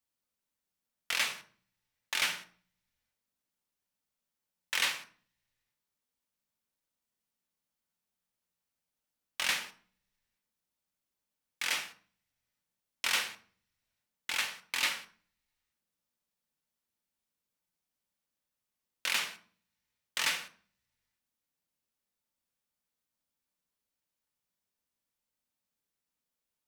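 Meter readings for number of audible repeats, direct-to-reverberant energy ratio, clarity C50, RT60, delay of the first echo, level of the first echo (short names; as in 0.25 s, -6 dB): none, 5.0 dB, 12.0 dB, 0.45 s, none, none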